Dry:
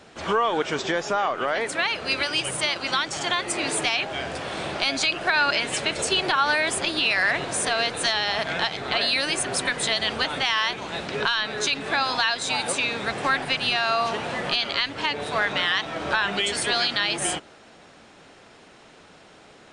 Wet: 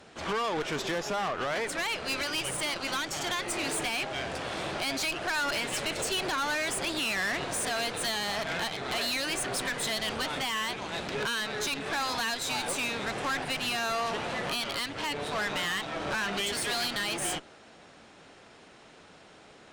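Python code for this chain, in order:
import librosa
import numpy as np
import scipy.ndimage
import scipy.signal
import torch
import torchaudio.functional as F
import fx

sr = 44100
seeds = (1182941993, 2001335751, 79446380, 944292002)

y = fx.tube_stage(x, sr, drive_db=27.0, bias=0.65)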